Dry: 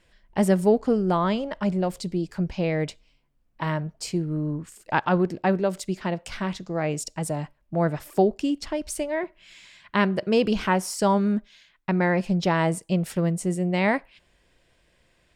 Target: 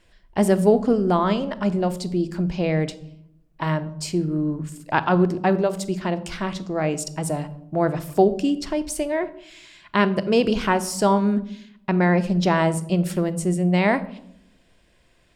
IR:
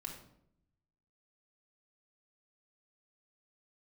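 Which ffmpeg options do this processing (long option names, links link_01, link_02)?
-filter_complex "[0:a]asplit=2[link_01][link_02];[link_02]equalizer=frequency=2000:width_type=o:width=0.48:gain=-6.5[link_03];[1:a]atrim=start_sample=2205[link_04];[link_03][link_04]afir=irnorm=-1:irlink=0,volume=-3dB[link_05];[link_01][link_05]amix=inputs=2:normalize=0"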